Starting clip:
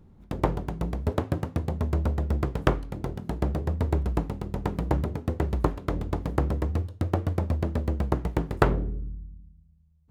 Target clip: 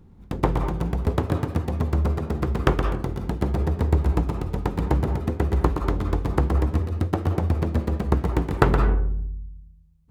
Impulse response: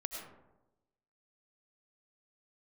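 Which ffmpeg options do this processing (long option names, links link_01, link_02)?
-filter_complex "[0:a]equalizer=frequency=610:width=6.2:gain=-6,asplit=2[link_01][link_02];[1:a]atrim=start_sample=2205,asetrate=83790,aresample=44100,adelay=119[link_03];[link_02][link_03]afir=irnorm=-1:irlink=0,volume=1dB[link_04];[link_01][link_04]amix=inputs=2:normalize=0,volume=3dB"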